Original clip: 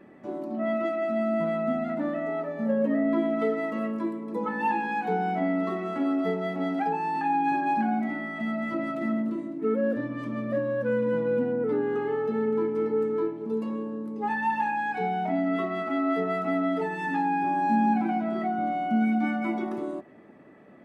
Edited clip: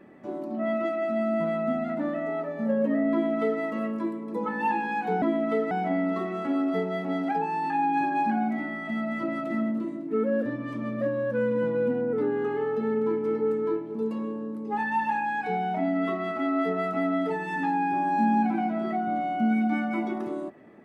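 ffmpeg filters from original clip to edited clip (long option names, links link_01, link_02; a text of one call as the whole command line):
ffmpeg -i in.wav -filter_complex "[0:a]asplit=3[link_01][link_02][link_03];[link_01]atrim=end=5.222[link_04];[link_02]atrim=start=3.118:end=3.612[link_05];[link_03]atrim=start=5.218[link_06];[link_04][link_05]acrossfade=duration=0.004:curve1=hsin:curve2=hsin[link_07];[link_07][link_06]acrossfade=duration=0.004:curve1=hsin:curve2=hsin" out.wav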